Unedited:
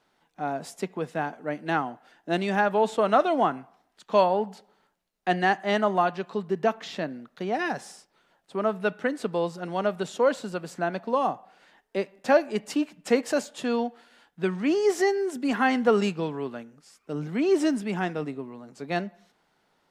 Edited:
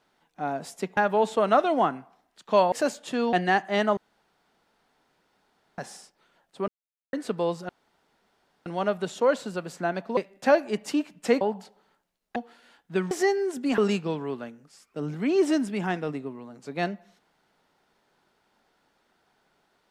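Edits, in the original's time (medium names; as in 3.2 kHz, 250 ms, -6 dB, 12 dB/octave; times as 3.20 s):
0.97–2.58 s: delete
4.33–5.28 s: swap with 13.23–13.84 s
5.92–7.73 s: room tone
8.63–9.08 s: mute
9.64 s: insert room tone 0.97 s
11.15–11.99 s: delete
14.59–14.90 s: delete
15.57–15.91 s: delete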